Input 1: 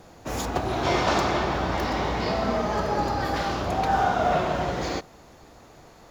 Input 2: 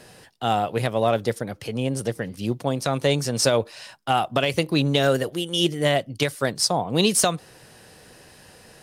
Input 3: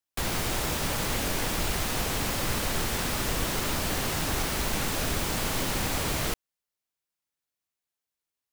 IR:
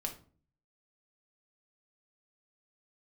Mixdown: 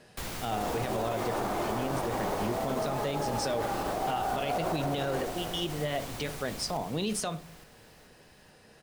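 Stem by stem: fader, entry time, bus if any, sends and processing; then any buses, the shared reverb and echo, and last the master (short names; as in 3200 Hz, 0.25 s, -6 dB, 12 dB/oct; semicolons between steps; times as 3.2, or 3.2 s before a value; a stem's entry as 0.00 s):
-1.0 dB, 0.25 s, no send, echo send -9.5 dB, limiter -20 dBFS, peak gain reduction 9 dB; band-pass 560 Hz, Q 0.63
-11.0 dB, 0.00 s, send -5 dB, no echo send, high shelf 8100 Hz -11 dB
-6.0 dB, 0.00 s, no send, echo send -8.5 dB, auto duck -15 dB, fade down 1.75 s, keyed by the second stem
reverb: on, RT60 0.45 s, pre-delay 5 ms
echo: feedback echo 0.433 s, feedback 51%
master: limiter -21.5 dBFS, peak gain reduction 9 dB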